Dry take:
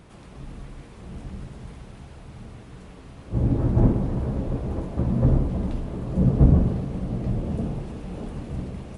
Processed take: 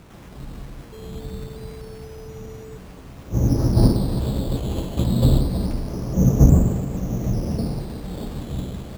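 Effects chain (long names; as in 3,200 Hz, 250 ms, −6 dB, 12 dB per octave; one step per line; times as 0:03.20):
0:00.91–0:02.76: steady tone 440 Hz −41 dBFS
sample-and-hold swept by an LFO 9×, swing 60% 0.26 Hz
level +3 dB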